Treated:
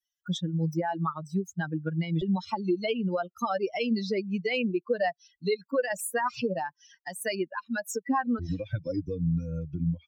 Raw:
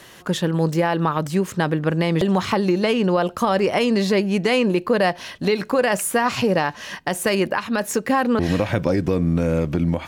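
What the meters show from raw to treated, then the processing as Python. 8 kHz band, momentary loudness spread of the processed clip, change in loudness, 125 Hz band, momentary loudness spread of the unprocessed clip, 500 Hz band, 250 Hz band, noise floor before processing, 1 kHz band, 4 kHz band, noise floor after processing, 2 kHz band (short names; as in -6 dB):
-10.0 dB, 5 LU, -9.5 dB, -8.5 dB, 4 LU, -10.5 dB, -9.5 dB, -42 dBFS, -9.5 dB, -11.0 dB, -83 dBFS, -10.0 dB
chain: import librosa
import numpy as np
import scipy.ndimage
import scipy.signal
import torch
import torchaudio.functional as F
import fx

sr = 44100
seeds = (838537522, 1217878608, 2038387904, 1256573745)

y = fx.bin_expand(x, sr, power=3.0)
y = fx.band_squash(y, sr, depth_pct=40)
y = y * 10.0 ** (-2.5 / 20.0)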